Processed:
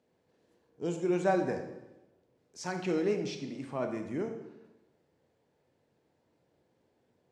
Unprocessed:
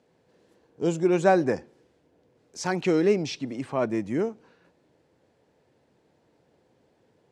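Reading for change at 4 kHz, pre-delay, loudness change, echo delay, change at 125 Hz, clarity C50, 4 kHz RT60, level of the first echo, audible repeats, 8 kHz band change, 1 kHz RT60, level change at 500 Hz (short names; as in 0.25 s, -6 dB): -8.0 dB, 17 ms, -7.5 dB, none, -7.5 dB, 7.5 dB, 0.80 s, none, none, -8.0 dB, 1.0 s, -7.5 dB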